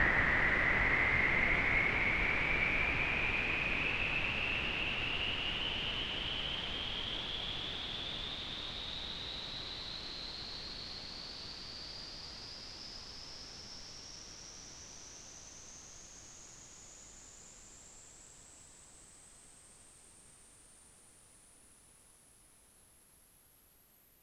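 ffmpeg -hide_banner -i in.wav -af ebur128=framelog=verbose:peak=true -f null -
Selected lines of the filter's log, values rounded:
Integrated loudness:
  I:         -33.9 LUFS
  Threshold: -46.5 LUFS
Loudness range:
  LRA:        24.0 LU
  Threshold: -57.5 LUFS
  LRA low:   -54.5 LUFS
  LRA high:  -30.5 LUFS
True peak:
  Peak:      -17.9 dBFS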